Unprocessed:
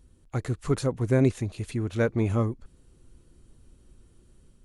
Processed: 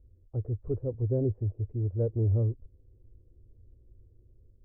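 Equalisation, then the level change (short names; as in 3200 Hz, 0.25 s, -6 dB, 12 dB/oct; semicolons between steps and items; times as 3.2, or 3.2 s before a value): ladder low-pass 570 Hz, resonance 45%; resonant low shelf 130 Hz +7.5 dB, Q 3; -1.0 dB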